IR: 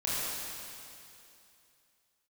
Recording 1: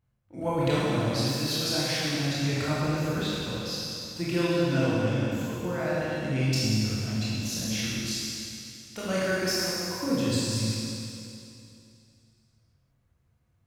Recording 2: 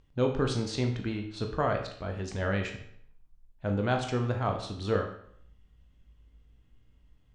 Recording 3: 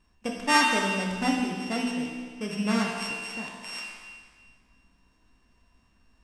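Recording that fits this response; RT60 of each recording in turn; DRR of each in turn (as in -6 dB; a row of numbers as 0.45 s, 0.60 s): 1; 2.7 s, 0.65 s, 1.7 s; -9.0 dB, 3.0 dB, -1.0 dB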